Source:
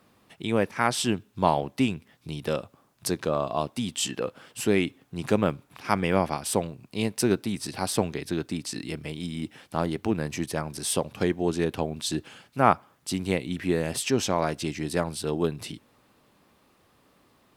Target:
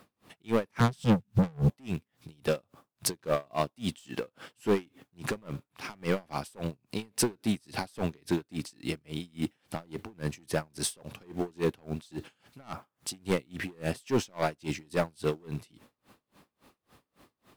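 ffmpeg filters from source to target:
-filter_complex "[0:a]asettb=1/sr,asplit=3[a][b][c];[a]atrim=end=0.804[d];[b]atrim=start=0.8:end=1.7,asetpts=PTS-STARTPTS,afade=t=in:d=0.004:c=qsin,afade=t=out:st=0.896:d=0.004:c=qsin,lowshelf=f=250:t=q:w=3:g=13.5[e];[c]atrim=start=1.696[f];[d][e]acrossfade=d=0.004:c1=hsin:c2=qsin[g];[g][f]acrossfade=d=0.004:c1=qsin:c2=hsin,aeval=exprs='(tanh(12.6*val(0)+0.05)-tanh(0.05))/12.6':c=same,asplit=2[h][i];[i]acrusher=bits=2:mode=log:mix=0:aa=0.000001,volume=-9.5dB[j];[h][j]amix=inputs=2:normalize=0,aeval=exprs='val(0)*pow(10,-33*(0.5-0.5*cos(2*PI*3.6*n/s))/20)':c=same,volume=2.5dB"

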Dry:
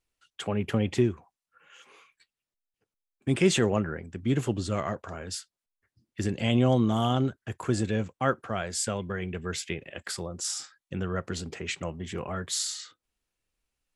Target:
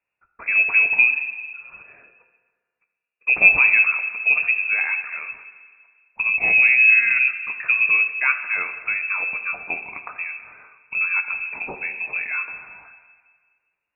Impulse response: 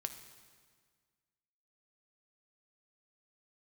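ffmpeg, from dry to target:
-filter_complex "[0:a]lowshelf=f=140:t=q:w=3:g=-12.5[a];[1:a]atrim=start_sample=2205[b];[a][b]afir=irnorm=-1:irlink=0,lowpass=f=2.4k:t=q:w=0.5098,lowpass=f=2.4k:t=q:w=0.6013,lowpass=f=2.4k:t=q:w=0.9,lowpass=f=2.4k:t=q:w=2.563,afreqshift=-2800,volume=6.5dB"

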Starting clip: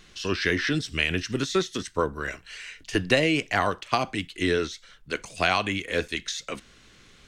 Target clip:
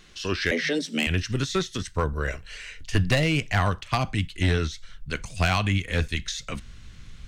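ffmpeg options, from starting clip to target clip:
-filter_complex "[0:a]asubboost=boost=8.5:cutoff=130,volume=14.5dB,asoftclip=hard,volume=-14.5dB,asettb=1/sr,asplit=3[a][b][c];[a]atrim=end=0.514[d];[b]atrim=start=0.51:end=1.07,asetpts=PTS-STARTPTS,afade=t=in:d=0.004:c=qsin,afade=t=out:st=0.556:d=0.004:c=qsin,afreqshift=150[e];[c]atrim=start=1.066[f];[d][e]acrossfade=d=0.004:c1=hsin:c2=qsin[g];[g][f]acrossfade=d=0.004:c1=qsin:c2=hsin,asettb=1/sr,asplit=3[h][i][j];[h]atrim=end=2.134[k];[i]atrim=start=2.13:end=2.8,asetpts=PTS-STARTPTS,afade=t=in:d=0.004:c=qsin,afade=t=out:st=0.666:d=0.004:c=qsin,equalizer=f=500:w=1.7:g=9.5[l];[j]atrim=start=2.796[m];[k][l]acrossfade=d=0.004:c1=hsin:c2=qsin[n];[n][m]acrossfade=d=0.004:c1=qsin:c2=hsin"

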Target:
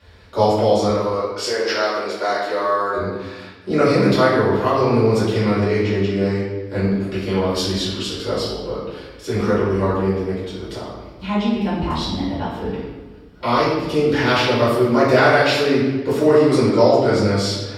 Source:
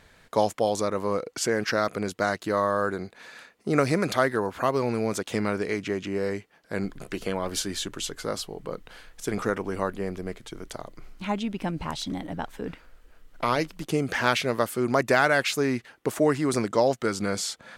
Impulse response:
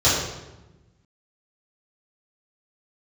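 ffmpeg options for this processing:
-filter_complex "[0:a]asettb=1/sr,asplit=3[a][b][c];[a]atrim=end=0.884[d];[b]atrim=start=0.88:end=2.96,asetpts=PTS-STARTPTS,afade=t=in:d=0.004:c=qsin,afade=t=out:st=2.076:d=0.004:c=qsin,highpass=530[e];[c]atrim=start=2.956[f];[d][e]acrossfade=d=0.004:c1=hsin:c2=qsin[g];[g][f]acrossfade=d=0.004:c1=qsin:c2=hsin[h];[1:a]atrim=start_sample=2205,asetrate=33957,aresample=44100[i];[h][i]afir=irnorm=-1:irlink=0,volume=-14.5dB"

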